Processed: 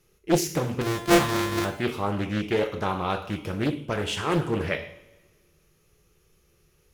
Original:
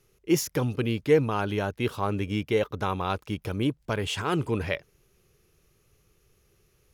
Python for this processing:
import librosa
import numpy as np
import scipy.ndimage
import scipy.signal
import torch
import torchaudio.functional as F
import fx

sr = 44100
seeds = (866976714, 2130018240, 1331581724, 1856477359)

y = fx.sample_sort(x, sr, block=128, at=(0.81, 1.65))
y = fx.rev_double_slope(y, sr, seeds[0], early_s=0.62, late_s=1.6, knee_db=-18, drr_db=3.5)
y = fx.doppler_dist(y, sr, depth_ms=0.78)